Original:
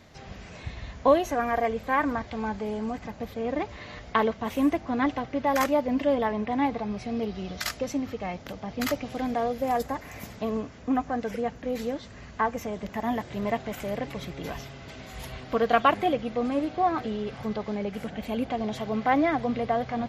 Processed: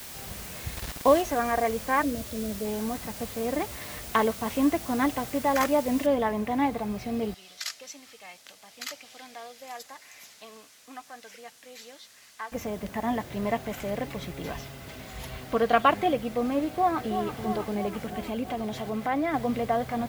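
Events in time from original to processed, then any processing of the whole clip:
0.76–1.22 s: word length cut 6-bit, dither none
2.03–2.65 s: spectral selection erased 670–3300 Hz
6.06 s: noise floor step -42 dB -53 dB
7.34–12.52 s: band-pass filter 5.7 kHz, Q 0.67
16.71–17.36 s: echo throw 330 ms, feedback 70%, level -8 dB
18.25–19.34 s: compression 1.5:1, threshold -31 dBFS

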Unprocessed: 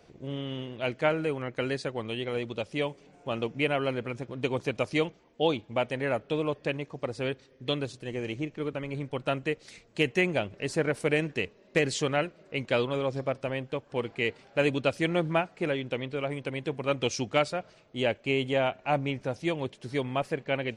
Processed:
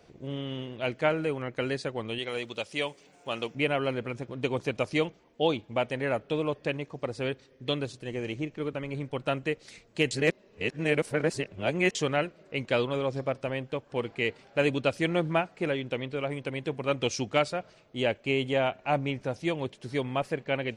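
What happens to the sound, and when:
2.18–3.55 s: tilt EQ +2.5 dB/octave
10.11–11.95 s: reverse

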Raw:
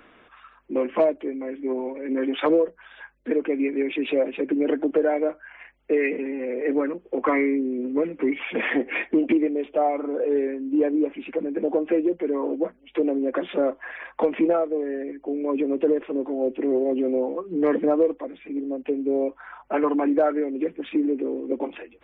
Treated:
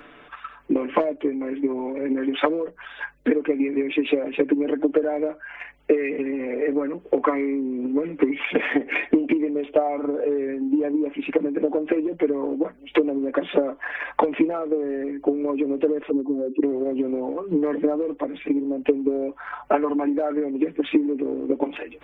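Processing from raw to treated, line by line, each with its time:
16.10–16.63 s: spectral contrast enhancement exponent 2.5
whole clip: comb 6.9 ms, depth 48%; compression 3:1, threshold -30 dBFS; transient shaper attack +9 dB, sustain +5 dB; trim +4.5 dB

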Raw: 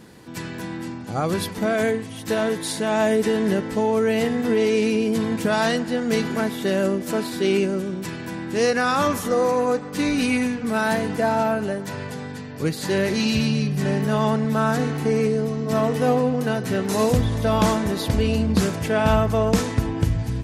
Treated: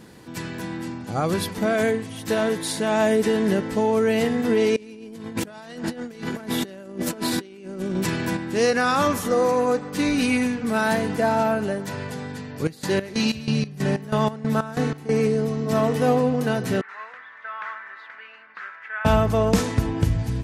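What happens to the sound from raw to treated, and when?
4.76–8.37 s: compressor with a negative ratio -29 dBFS, ratio -0.5
12.51–15.19 s: square tremolo 3.1 Hz
16.81–19.05 s: Butterworth band-pass 1.6 kHz, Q 2

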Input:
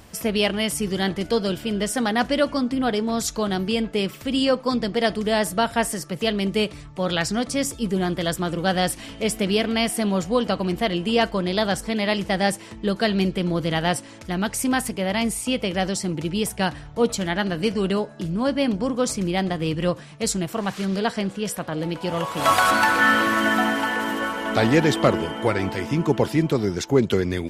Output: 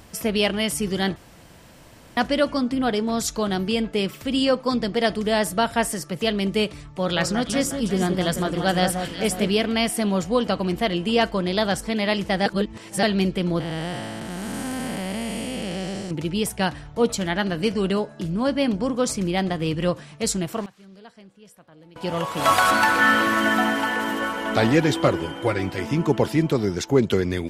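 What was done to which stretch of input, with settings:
1.16–2.17 s: room tone
6.90–9.49 s: echo whose repeats swap between lows and highs 180 ms, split 1.6 kHz, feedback 66%, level -6 dB
12.46–13.03 s: reverse
13.60–16.11 s: spectral blur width 479 ms
20.29–22.33 s: dip -22.5 dB, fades 0.37 s logarithmic
24.72–25.78 s: comb of notches 220 Hz

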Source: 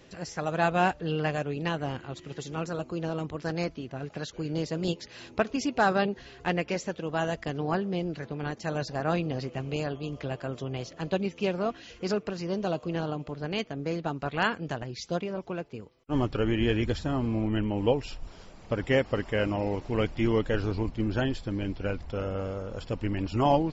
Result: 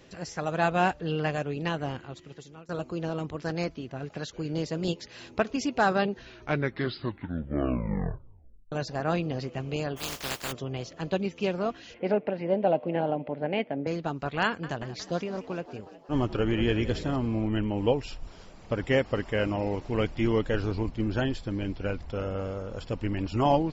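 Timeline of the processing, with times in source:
1.86–2.69 s: fade out, to -23.5 dB
6.11 s: tape stop 2.61 s
9.96–10.51 s: spectral contrast reduction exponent 0.23
11.94–13.87 s: cabinet simulation 140–2900 Hz, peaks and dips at 260 Hz +6 dB, 570 Hz +10 dB, 810 Hz +8 dB, 1.2 kHz -9 dB, 2.1 kHz +5 dB
14.45–17.16 s: frequency-shifting echo 181 ms, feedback 61%, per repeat +65 Hz, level -15 dB

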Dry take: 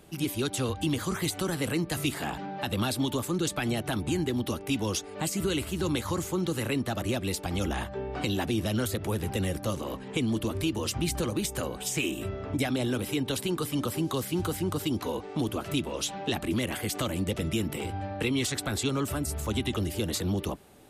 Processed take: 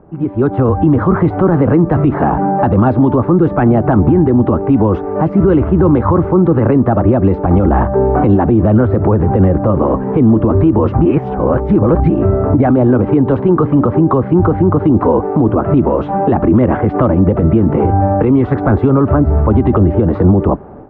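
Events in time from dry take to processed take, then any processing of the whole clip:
11.05–12.10 s: reverse
whole clip: low-pass 1.2 kHz 24 dB/octave; level rider gain up to 12 dB; loudness maximiser +13 dB; trim -1.5 dB

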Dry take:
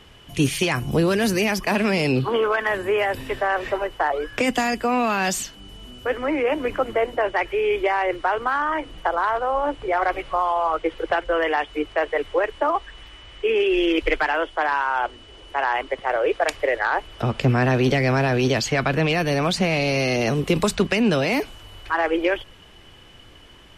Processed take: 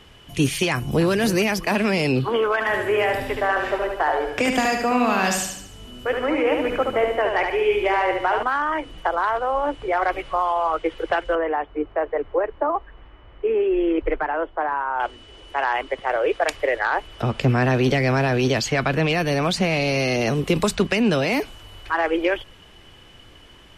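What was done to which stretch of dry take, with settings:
0.70–1.12 s: echo throw 300 ms, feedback 25%, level -12 dB
2.53–8.43 s: feedback delay 73 ms, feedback 47%, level -4.5 dB
11.35–15.00 s: low-pass 1.2 kHz

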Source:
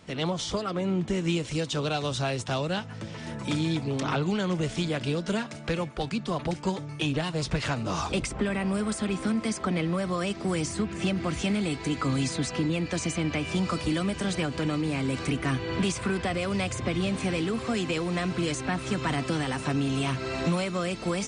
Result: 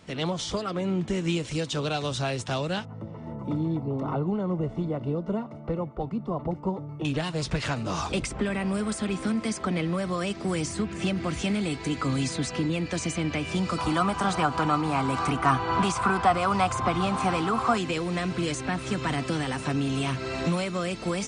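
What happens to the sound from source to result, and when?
2.85–7.05 s: Savitzky-Golay filter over 65 samples
13.78–17.78 s: high-order bell 1 kHz +14.5 dB 1.2 oct

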